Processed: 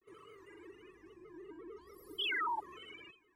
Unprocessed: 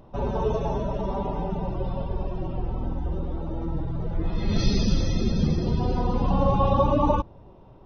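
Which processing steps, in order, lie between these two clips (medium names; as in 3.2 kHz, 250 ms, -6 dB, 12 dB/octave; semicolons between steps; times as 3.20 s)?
compression 2.5:1, threshold -31 dBFS, peak gain reduction 11 dB; feedback comb 160 Hz, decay 0.82 s, harmonics odd, mix 100%; painted sound fall, 5.15–6.02 s, 350–1400 Hz -34 dBFS; granulator, grains 20 per s, pitch spread up and down by 3 st; speed mistake 33 rpm record played at 78 rpm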